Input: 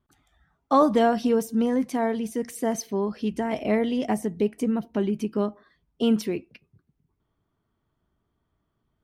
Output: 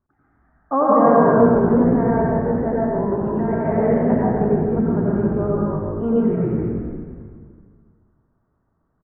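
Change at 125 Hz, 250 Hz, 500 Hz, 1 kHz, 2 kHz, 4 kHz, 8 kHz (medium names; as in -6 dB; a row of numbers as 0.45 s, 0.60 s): +15.0 dB, +6.5 dB, +8.0 dB, +7.0 dB, +4.5 dB, under -25 dB, under -40 dB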